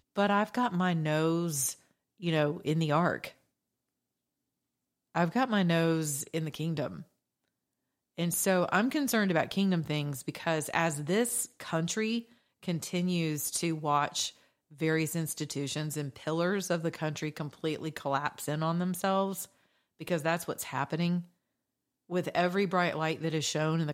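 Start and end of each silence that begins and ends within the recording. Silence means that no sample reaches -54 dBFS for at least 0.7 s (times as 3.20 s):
3.33–5.15 s
7.04–8.17 s
21.27–22.09 s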